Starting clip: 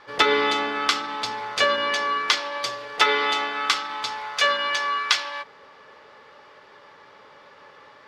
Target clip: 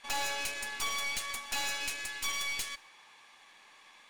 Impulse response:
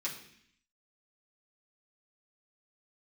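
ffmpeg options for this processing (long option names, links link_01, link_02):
-filter_complex "[0:a]aeval=exprs='(tanh(20*val(0)+0.7)-tanh(0.7))/20':channel_layout=same,asetrate=86877,aresample=44100,asplit=2[link_01][link_02];[1:a]atrim=start_sample=2205,adelay=121[link_03];[link_02][link_03]afir=irnorm=-1:irlink=0,volume=-25.5dB[link_04];[link_01][link_04]amix=inputs=2:normalize=0,volume=-5dB"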